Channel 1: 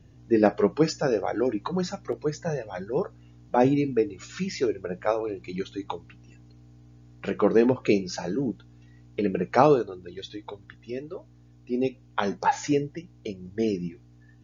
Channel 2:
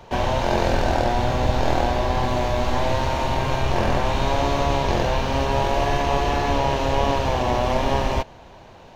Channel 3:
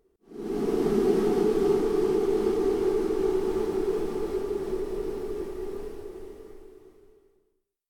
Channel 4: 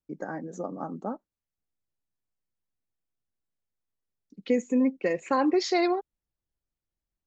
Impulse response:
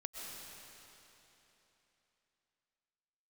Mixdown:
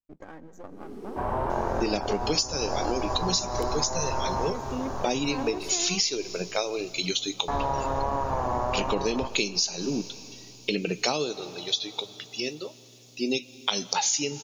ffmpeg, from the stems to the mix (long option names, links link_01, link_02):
-filter_complex "[0:a]highpass=frequency=130:width=0.5412,highpass=frequency=130:width=1.3066,aexciter=amount=12.2:drive=4.4:freq=2600,adelay=1500,volume=-0.5dB,asplit=2[link_01][link_02];[link_02]volume=-17.5dB[link_03];[1:a]lowpass=frequency=1200:width_type=q:width=2.3,adelay=1050,volume=-8dB,asplit=3[link_04][link_05][link_06];[link_04]atrim=end=5.58,asetpts=PTS-STARTPTS,afade=type=out:start_time=5.576:duration=0.004:curve=hsin[link_07];[link_05]atrim=start=5.58:end=7.48,asetpts=PTS-STARTPTS,volume=0[link_08];[link_06]atrim=start=7.48,asetpts=PTS-STARTPTS,afade=type=in:duration=0.004:curve=hsin[link_09];[link_07][link_08][link_09]concat=n=3:v=0:a=1,asplit=2[link_10][link_11];[link_11]volume=-15.5dB[link_12];[2:a]adelay=350,volume=-14.5dB[link_13];[3:a]aeval=exprs='if(lt(val(0),0),0.251*val(0),val(0))':channel_layout=same,volume=-7.5dB,asplit=3[link_14][link_15][link_16];[link_15]volume=-13dB[link_17];[link_16]apad=whole_len=441428[link_18];[link_10][link_18]sidechaincompress=threshold=-40dB:ratio=8:attack=41:release=832[link_19];[4:a]atrim=start_sample=2205[link_20];[link_03][link_12][link_17]amix=inputs=3:normalize=0[link_21];[link_21][link_20]afir=irnorm=-1:irlink=0[link_22];[link_01][link_19][link_13][link_14][link_22]amix=inputs=5:normalize=0,acompressor=threshold=-22dB:ratio=16"